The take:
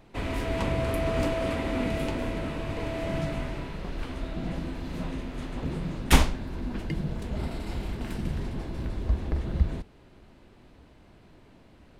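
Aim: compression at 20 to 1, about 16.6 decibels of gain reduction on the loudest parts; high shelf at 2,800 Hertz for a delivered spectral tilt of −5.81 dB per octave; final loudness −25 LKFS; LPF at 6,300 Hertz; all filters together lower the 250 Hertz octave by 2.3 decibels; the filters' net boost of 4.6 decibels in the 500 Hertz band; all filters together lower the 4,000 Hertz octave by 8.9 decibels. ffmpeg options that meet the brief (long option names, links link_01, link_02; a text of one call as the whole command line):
ffmpeg -i in.wav -af "lowpass=6300,equalizer=frequency=250:width_type=o:gain=-5.5,equalizer=frequency=500:width_type=o:gain=8.5,highshelf=frequency=2800:gain=-9,equalizer=frequency=4000:width_type=o:gain=-4.5,acompressor=threshold=-27dB:ratio=20,volume=9.5dB" out.wav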